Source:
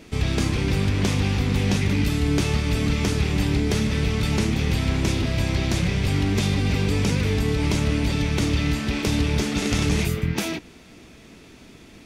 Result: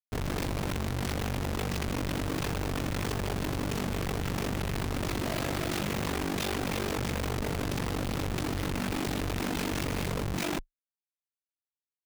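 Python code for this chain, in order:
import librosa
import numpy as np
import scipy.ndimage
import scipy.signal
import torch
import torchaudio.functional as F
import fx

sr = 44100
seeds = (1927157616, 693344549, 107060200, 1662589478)

y = fx.highpass(x, sr, hz=310.0, slope=6, at=(5.19, 6.97), fade=0.02)
y = fx.schmitt(y, sr, flips_db=-31.5)
y = y * np.sin(2.0 * np.pi * 24.0 * np.arange(len(y)) / sr)
y = y * 10.0 ** (-5.5 / 20.0)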